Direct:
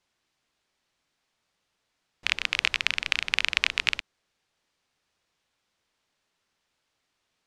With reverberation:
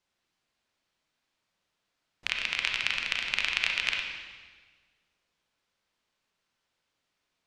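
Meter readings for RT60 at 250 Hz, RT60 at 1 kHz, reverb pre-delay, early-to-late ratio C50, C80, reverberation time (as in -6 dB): 1.7 s, 1.4 s, 31 ms, 2.5 dB, 5.0 dB, 1.5 s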